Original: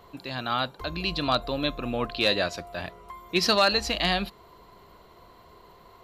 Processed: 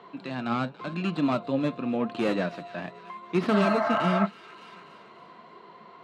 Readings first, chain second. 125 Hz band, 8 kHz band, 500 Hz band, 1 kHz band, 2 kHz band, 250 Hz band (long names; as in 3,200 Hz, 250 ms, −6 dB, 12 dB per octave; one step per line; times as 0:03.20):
+3.5 dB, below −10 dB, +0.5 dB, −0.5 dB, −4.5 dB, +6.0 dB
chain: stylus tracing distortion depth 0.31 ms
high-pass filter 190 Hz 24 dB per octave
healed spectral selection 0:03.56–0:04.23, 600–2,200 Hz before
bass and treble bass +12 dB, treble −14 dB
harmonic and percussive parts rebalanced percussive −5 dB
flanger 0.89 Hz, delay 2.1 ms, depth 7 ms, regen +65%
high-frequency loss of the air 100 metres
on a send: delay with a high-pass on its return 287 ms, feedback 47%, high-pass 2,100 Hz, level −16 dB
on the sum: one half of a high-frequency compander encoder only
level +4.5 dB